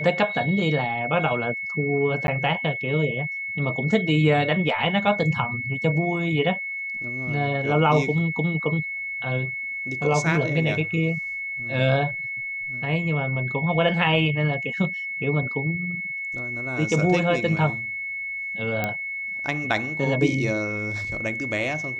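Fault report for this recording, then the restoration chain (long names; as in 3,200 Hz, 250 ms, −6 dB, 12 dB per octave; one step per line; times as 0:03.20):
whistle 2,200 Hz −28 dBFS
0:02.27–0:02.28: drop-out 11 ms
0:18.84: click −11 dBFS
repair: click removal
notch filter 2,200 Hz, Q 30
repair the gap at 0:02.27, 11 ms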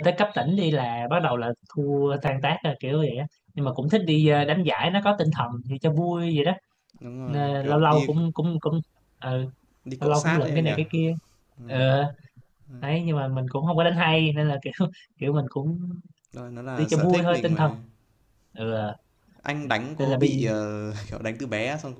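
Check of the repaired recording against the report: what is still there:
none of them is left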